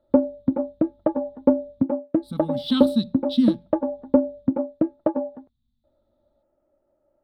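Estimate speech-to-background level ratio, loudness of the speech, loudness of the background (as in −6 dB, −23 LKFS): −0.5 dB, −25.0 LKFS, −24.5 LKFS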